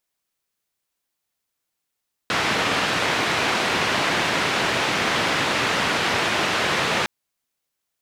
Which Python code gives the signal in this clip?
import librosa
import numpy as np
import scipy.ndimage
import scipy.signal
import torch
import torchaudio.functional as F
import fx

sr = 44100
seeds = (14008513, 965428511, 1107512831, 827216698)

y = fx.band_noise(sr, seeds[0], length_s=4.76, low_hz=110.0, high_hz=2600.0, level_db=-22.0)